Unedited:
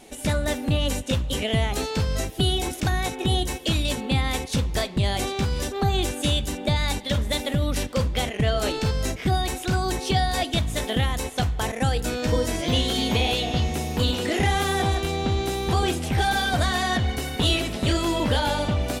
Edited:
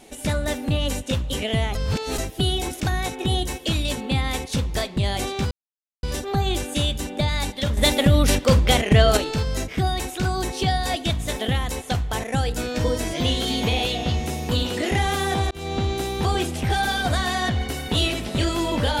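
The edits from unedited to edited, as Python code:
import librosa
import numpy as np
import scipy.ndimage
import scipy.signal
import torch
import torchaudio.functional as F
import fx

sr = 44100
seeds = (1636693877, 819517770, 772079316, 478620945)

y = fx.edit(x, sr, fx.reverse_span(start_s=1.75, length_s=0.43),
    fx.insert_silence(at_s=5.51, length_s=0.52),
    fx.clip_gain(start_s=7.25, length_s=1.4, db=7.5),
    fx.fade_in_span(start_s=14.99, length_s=0.3, curve='qsin'), tone=tone)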